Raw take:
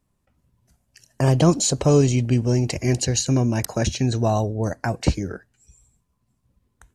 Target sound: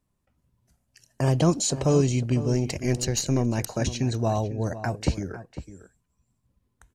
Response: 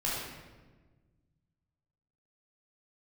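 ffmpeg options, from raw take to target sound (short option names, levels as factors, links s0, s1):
-filter_complex "[0:a]asettb=1/sr,asplit=3[s0][s1][s2];[s0]atrim=end=2.534[s3];[s1]atrim=start=2.53:end=3.68,asetpts=PTS-STARTPTS,afade=t=in:d=0.004:c=qsin,afade=t=out:st=1.146:d=0.004:c=qsin,aeval=exprs='0.447*(cos(1*acos(clip(val(0)/0.447,-1,1)))-cos(1*PI/2))+0.0355*(cos(4*acos(clip(val(0)/0.447,-1,1)))-cos(4*PI/2))':c=same[s4];[s2]atrim=start=3.676[s5];[s3][s4]acrossfade=d=0.004:c1=hsin:c2=qsin[s6];[s6][s5]acrossfade=d=0.004:c1=qsin:c2=hsin,asplit=2[s7][s8];[s8]adelay=501.5,volume=0.224,highshelf=f=4000:g=-11.3[s9];[s7][s9]amix=inputs=2:normalize=0,volume=0.596"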